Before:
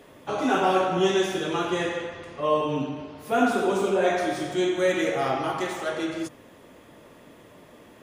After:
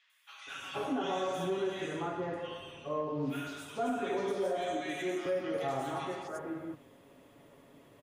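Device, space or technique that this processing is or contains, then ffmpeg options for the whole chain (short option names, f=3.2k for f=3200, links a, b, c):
soft clipper into limiter: -filter_complex "[0:a]asettb=1/sr,asplit=3[a][b][c];[a]atrim=end=4.304[d];[b]atrim=start=4.3:end=4.79,asetpts=PTS-STARTPTS,afade=t=in:d=0.004:c=qsin,afade=t=out:st=0.486:d=0.004:c=qsin,highpass=f=180:w=0.5412,highpass=f=180:w=1.3066[e];[c]atrim=start=4.786[f];[d][e]acrossfade=d=0.004:c1=hsin:c2=qsin[g];[g][f]acrossfade=d=0.004:c1=qsin:c2=hsin,aecho=1:1:7.2:0.42,acrossover=split=1600|5600[h][i][j];[j]adelay=100[k];[h]adelay=470[l];[l][i][k]amix=inputs=3:normalize=0,asoftclip=type=tanh:threshold=-9dB,alimiter=limit=-16.5dB:level=0:latency=1:release=184,volume=-8.5dB"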